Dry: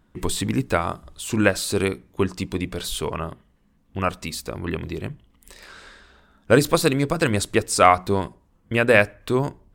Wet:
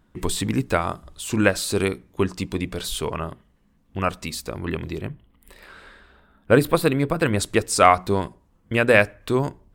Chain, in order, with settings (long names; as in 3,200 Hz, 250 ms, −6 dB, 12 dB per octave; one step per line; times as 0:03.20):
0:05.01–0:07.39: parametric band 6,200 Hz −14 dB 0.94 octaves